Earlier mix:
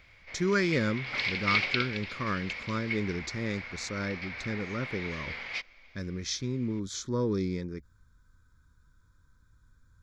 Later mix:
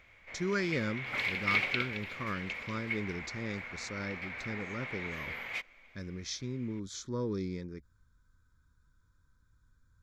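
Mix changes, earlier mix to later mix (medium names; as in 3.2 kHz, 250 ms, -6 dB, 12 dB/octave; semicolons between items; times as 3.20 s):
speech -5.5 dB; background: remove resonant low-pass 5 kHz, resonance Q 4.1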